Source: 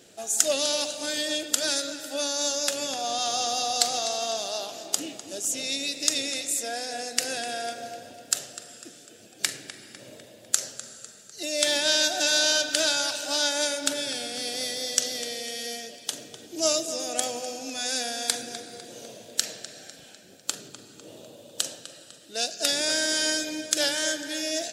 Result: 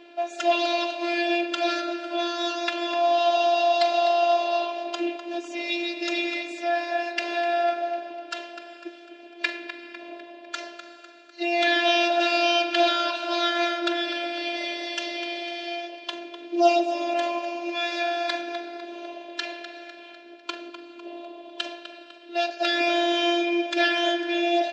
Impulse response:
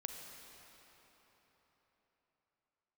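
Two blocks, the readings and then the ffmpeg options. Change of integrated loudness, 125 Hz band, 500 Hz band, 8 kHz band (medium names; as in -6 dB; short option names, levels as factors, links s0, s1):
+1.5 dB, under -15 dB, +7.0 dB, -20.0 dB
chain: -af "afftfilt=real='hypot(re,im)*cos(PI*b)':imag='0':win_size=512:overlap=0.75,acontrast=32,highpass=180,equalizer=f=190:t=q:w=4:g=-8,equalizer=f=330:t=q:w=4:g=7,equalizer=f=620:t=q:w=4:g=8,equalizer=f=1000:t=q:w=4:g=10,equalizer=f=1600:t=q:w=4:g=5,equalizer=f=2500:t=q:w=4:g=9,lowpass=f=3700:w=0.5412,lowpass=f=3700:w=1.3066"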